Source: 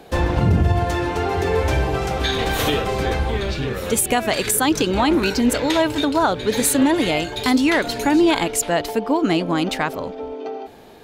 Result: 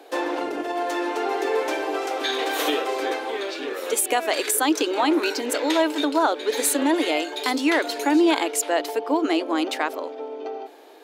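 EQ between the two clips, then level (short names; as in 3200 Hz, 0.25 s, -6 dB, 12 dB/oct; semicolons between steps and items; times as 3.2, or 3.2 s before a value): elliptic high-pass 290 Hz, stop band 40 dB; -2.0 dB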